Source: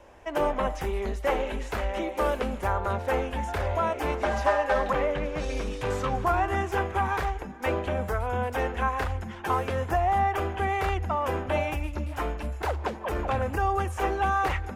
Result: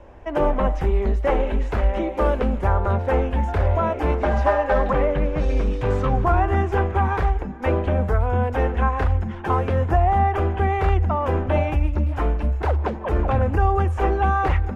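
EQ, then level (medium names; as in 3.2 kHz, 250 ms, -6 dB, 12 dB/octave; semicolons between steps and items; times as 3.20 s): RIAA curve playback; bass shelf 130 Hz -9.5 dB; +3.5 dB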